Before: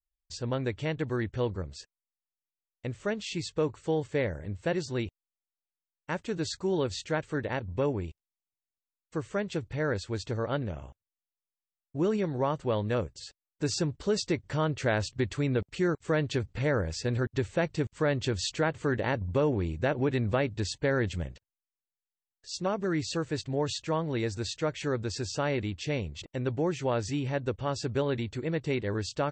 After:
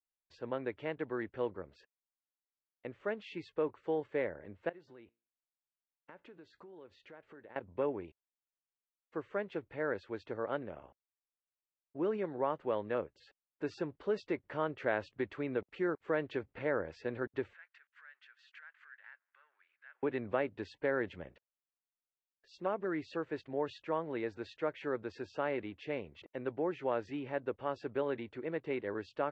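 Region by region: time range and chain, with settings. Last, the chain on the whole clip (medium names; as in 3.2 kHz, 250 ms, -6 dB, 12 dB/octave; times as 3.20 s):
4.69–7.56 s: compression 12:1, threshold -41 dBFS + feedback comb 58 Hz, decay 0.34 s, mix 30%
17.53–20.03 s: compression 20:1, threshold -36 dBFS + waveshaping leveller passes 1 + ladder high-pass 1.4 kHz, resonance 60%
whole clip: low-pass 3.9 kHz 12 dB/octave; three-band isolator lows -18 dB, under 250 Hz, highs -17 dB, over 2.8 kHz; trim -4 dB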